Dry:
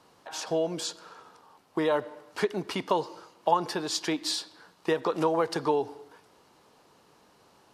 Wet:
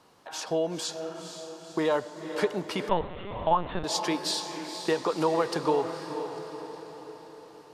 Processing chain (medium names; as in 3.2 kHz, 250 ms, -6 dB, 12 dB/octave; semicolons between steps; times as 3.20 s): echo that smears into a reverb 489 ms, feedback 54%, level -8.5 dB; 2.89–3.84 s: LPC vocoder at 8 kHz pitch kept